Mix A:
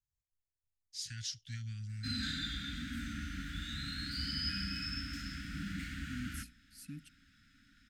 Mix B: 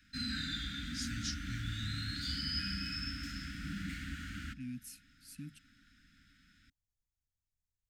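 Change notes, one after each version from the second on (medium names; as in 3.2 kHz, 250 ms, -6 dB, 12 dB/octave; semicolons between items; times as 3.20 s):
second voice: entry -1.50 s; background: entry -1.90 s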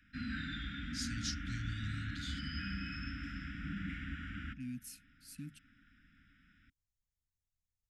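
background: add Savitzky-Golay filter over 25 samples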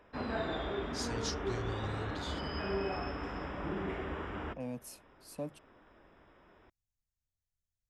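master: remove Chebyshev band-stop 280–1400 Hz, order 5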